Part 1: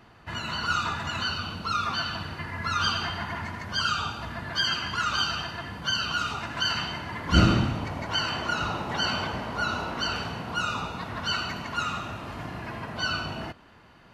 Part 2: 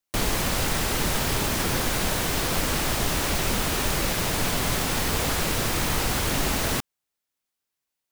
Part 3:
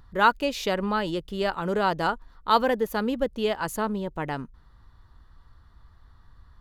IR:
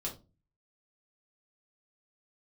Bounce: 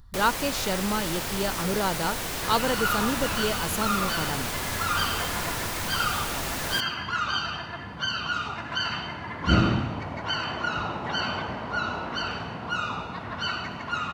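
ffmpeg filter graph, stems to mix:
-filter_complex "[0:a]highpass=f=440:p=1,aemphasis=mode=reproduction:type=bsi,adelay=2150,volume=1dB[a];[1:a]acrossover=split=430[b][c];[b]acompressor=threshold=-30dB:ratio=6[d];[d][c]amix=inputs=2:normalize=0,volume=-5dB,asplit=2[e][f];[f]volume=-21.5dB[g];[2:a]bass=f=250:g=6,treble=f=4k:g=9,volume=-4dB[h];[g]aecho=0:1:71|142|213|284|355|426|497:1|0.49|0.24|0.118|0.0576|0.0282|0.0138[i];[a][e][h][i]amix=inputs=4:normalize=0"

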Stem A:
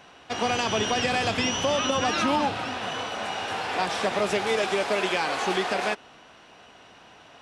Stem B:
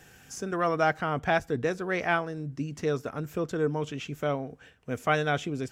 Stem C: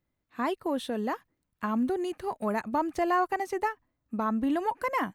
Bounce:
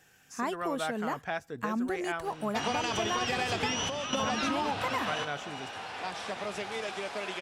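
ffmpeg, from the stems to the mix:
-filter_complex "[0:a]adelay=2250,volume=0.5dB[a];[1:a]highpass=f=230:p=1,volume=-6.5dB[b];[2:a]equalizer=f=7.5k:t=o:w=0.41:g=9,volume=0dB,asplit=2[c][d];[d]apad=whole_len=426122[e];[a][e]sidechaingate=range=-10dB:threshold=-52dB:ratio=16:detection=peak[f];[f][b][c]amix=inputs=3:normalize=0,equalizer=f=360:w=0.94:g=-3.5,acompressor=threshold=-27dB:ratio=6"

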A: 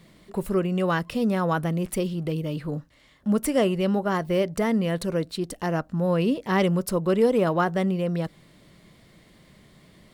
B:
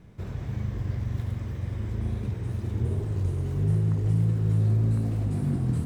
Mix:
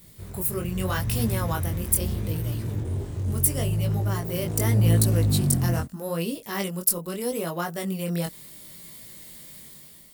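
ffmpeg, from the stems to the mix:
-filter_complex "[0:a]aemphasis=mode=production:type=75fm,volume=-4.5dB[a];[1:a]dynaudnorm=f=480:g=5:m=11dB,asoftclip=type=tanh:threshold=-15dB,volume=-3dB[b];[a][b]amix=inputs=2:normalize=0,highshelf=f=6.3k:g=10.5,dynaudnorm=f=600:g=3:m=8.5dB,flanger=delay=17.5:depth=5.8:speed=0.79"

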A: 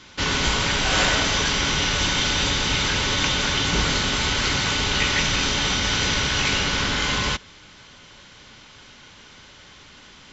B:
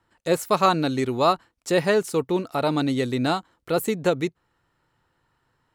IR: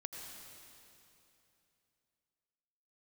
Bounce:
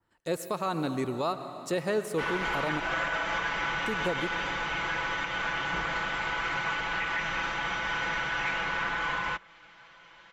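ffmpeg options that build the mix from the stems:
-filter_complex "[0:a]acrossover=split=560 2400:gain=0.178 1 0.112[a][b][c];[a][b][c]amix=inputs=3:normalize=0,aecho=1:1:6:0.95,adelay=2000,volume=-4dB[d];[1:a]volume=-9.5dB,asplit=3[e][f][g];[e]atrim=end=2.8,asetpts=PTS-STARTPTS,afade=t=out:st=2.796:d=0.004:c=hsin[h];[f]atrim=start=2.8:end=3.86,asetpts=PTS-STARTPTS,volume=0[i];[g]atrim=start=3.86,asetpts=PTS-STARTPTS,afade=t=in:d=0.004:c=hsin[j];[h][i][j]concat=n=3:v=0:a=1,asplit=2[k][l];[l]volume=-4dB[m];[2:a]atrim=start_sample=2205[n];[m][n]afir=irnorm=-1:irlink=0[o];[d][k][o]amix=inputs=3:normalize=0,adynamicequalizer=threshold=0.00501:dfrequency=4400:dqfactor=0.88:tfrequency=4400:tqfactor=0.88:attack=5:release=100:ratio=0.375:range=3:mode=cutabove:tftype=bell,alimiter=limit=-20dB:level=0:latency=1:release=109"

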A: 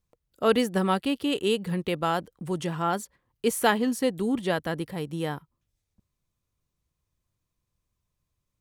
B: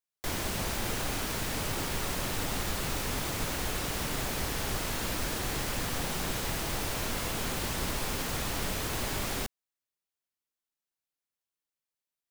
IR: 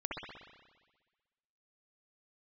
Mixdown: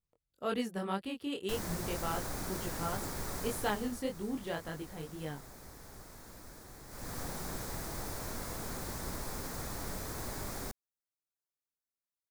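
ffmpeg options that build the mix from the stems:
-filter_complex "[0:a]flanger=delay=19:depth=6.2:speed=1.9,volume=-8.5dB[a];[1:a]equalizer=f=2.9k:w=2:g=-13.5,adelay=1250,volume=6dB,afade=t=out:st=3.42:d=0.6:silence=0.237137,afade=t=in:st=6.87:d=0.3:silence=0.266073[b];[a][b]amix=inputs=2:normalize=0"

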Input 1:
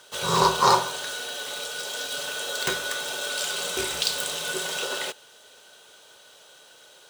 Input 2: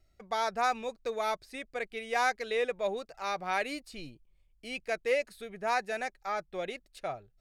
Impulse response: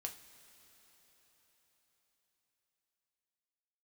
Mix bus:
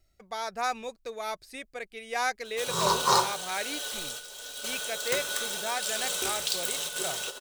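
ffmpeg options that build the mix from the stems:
-filter_complex "[0:a]bandreject=f=4.8k:w=28,adelay=2450,volume=-5dB[a];[1:a]volume=-1dB,asplit=2[b][c];[c]apad=whole_len=421047[d];[a][d]sidechaingate=range=-7dB:threshold=-55dB:ratio=16:detection=peak[e];[e][b]amix=inputs=2:normalize=0,highshelf=f=4.7k:g=8.5,tremolo=f=1.3:d=0.32"

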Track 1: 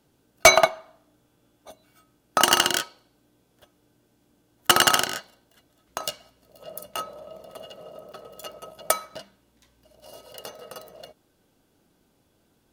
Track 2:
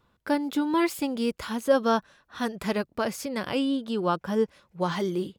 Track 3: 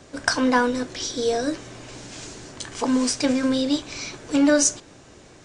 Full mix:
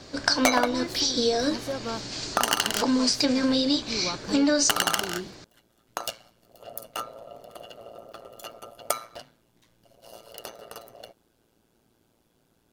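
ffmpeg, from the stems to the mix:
-filter_complex "[0:a]aeval=exprs='val(0)*sin(2*PI*57*n/s)':c=same,volume=1.5dB[a];[1:a]acompressor=threshold=-26dB:ratio=2.5,volume=-5dB[b];[2:a]lowpass=7.2k,equalizer=f=4.5k:w=2.9:g=11.5,volume=1dB[c];[a][b][c]amix=inputs=3:normalize=0,acompressor=threshold=-21dB:ratio=2.5"

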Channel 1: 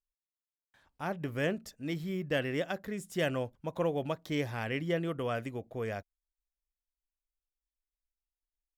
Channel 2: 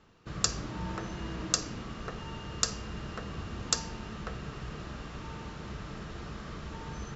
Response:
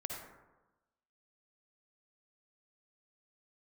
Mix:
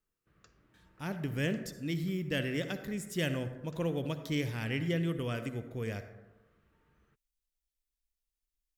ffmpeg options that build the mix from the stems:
-filter_complex "[0:a]equalizer=f=920:t=o:w=0.21:g=4.5,volume=0.5dB,asplit=2[a][b];[b]volume=-3.5dB[c];[1:a]acrossover=split=390 2300:gain=0.251 1 0.0708[d][e][f];[d][e][f]amix=inputs=3:normalize=0,volume=-18dB[g];[2:a]atrim=start_sample=2205[h];[c][h]afir=irnorm=-1:irlink=0[i];[a][g][i]amix=inputs=3:normalize=0,equalizer=f=830:t=o:w=1.8:g=-14"

